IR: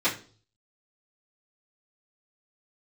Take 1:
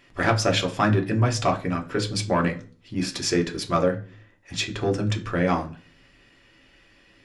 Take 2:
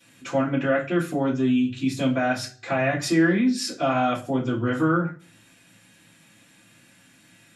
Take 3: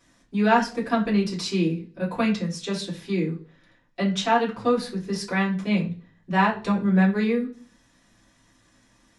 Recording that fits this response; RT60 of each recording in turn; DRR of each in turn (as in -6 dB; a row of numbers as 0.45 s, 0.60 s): 2; 0.40 s, 0.40 s, 0.40 s; 2.0 dB, -13.0 dB, -7.5 dB